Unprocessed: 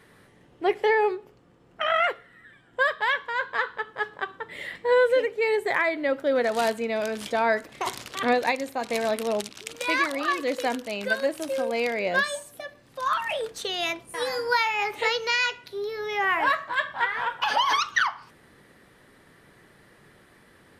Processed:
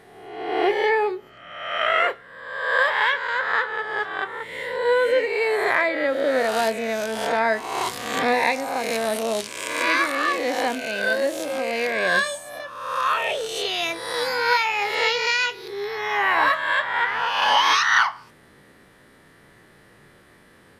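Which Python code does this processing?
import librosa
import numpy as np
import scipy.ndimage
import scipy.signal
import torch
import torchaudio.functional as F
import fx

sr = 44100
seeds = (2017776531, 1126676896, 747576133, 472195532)

y = fx.spec_swells(x, sr, rise_s=1.07)
y = fx.doubler(y, sr, ms=27.0, db=-14)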